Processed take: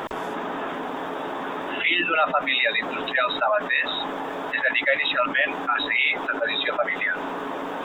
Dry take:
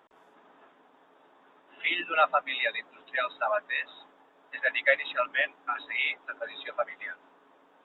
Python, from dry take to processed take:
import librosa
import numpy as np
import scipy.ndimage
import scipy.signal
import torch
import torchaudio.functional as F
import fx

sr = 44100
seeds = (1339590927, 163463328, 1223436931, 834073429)

y = fx.low_shelf(x, sr, hz=250.0, db=7.0)
y = fx.env_flatten(y, sr, amount_pct=70)